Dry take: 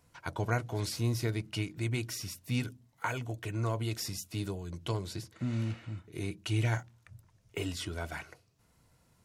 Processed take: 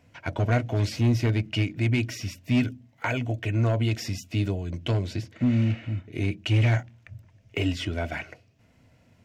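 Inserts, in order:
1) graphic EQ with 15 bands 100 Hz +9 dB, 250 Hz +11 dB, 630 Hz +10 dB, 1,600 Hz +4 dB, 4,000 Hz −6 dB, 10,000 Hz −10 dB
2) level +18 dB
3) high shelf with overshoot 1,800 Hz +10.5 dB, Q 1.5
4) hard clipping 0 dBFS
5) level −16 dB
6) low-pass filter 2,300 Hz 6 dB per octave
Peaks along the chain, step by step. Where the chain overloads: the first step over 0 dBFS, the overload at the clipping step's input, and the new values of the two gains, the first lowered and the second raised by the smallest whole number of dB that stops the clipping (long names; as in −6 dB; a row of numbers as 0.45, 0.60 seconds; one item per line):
−10.0, +8.0, +8.5, 0.0, −16.0, −16.0 dBFS
step 2, 8.5 dB
step 2 +9 dB, step 5 −7 dB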